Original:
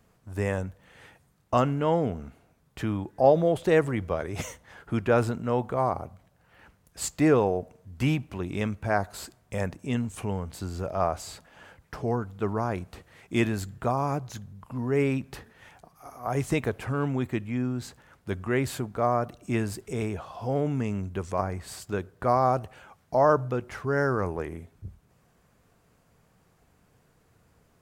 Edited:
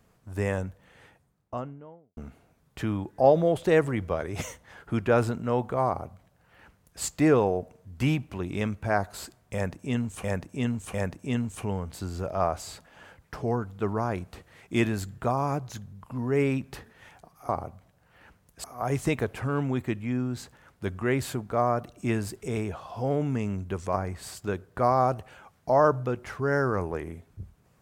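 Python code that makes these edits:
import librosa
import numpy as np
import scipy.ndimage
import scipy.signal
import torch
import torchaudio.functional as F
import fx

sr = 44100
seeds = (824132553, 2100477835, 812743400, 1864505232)

y = fx.studio_fade_out(x, sr, start_s=0.57, length_s=1.6)
y = fx.edit(y, sr, fx.duplicate(start_s=5.87, length_s=1.15, to_s=16.09),
    fx.repeat(start_s=9.54, length_s=0.7, count=3), tone=tone)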